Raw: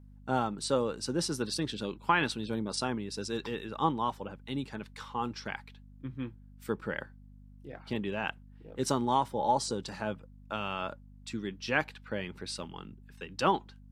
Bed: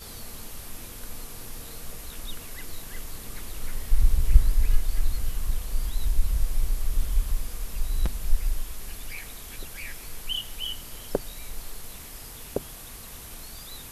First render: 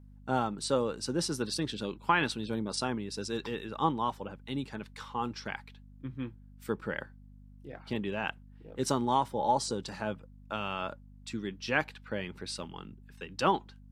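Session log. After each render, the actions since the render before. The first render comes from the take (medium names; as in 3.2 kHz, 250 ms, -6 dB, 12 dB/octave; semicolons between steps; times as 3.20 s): no audible change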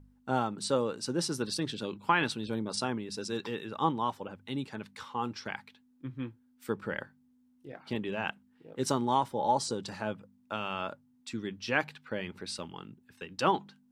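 de-hum 50 Hz, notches 4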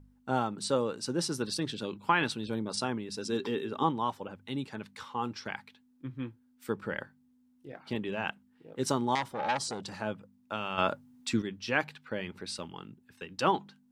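3.25–3.83 s: small resonant body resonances 270/390/3200 Hz, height 13 dB, ringing for 90 ms; 9.15–9.94 s: transformer saturation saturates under 2.4 kHz; 10.78–11.42 s: gain +8.5 dB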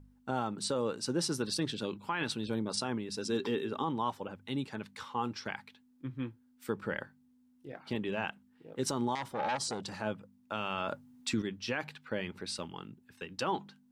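peak limiter -22 dBFS, peak gain reduction 10 dB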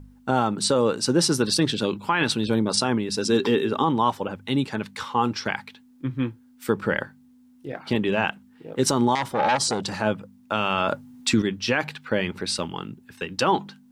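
trim +12 dB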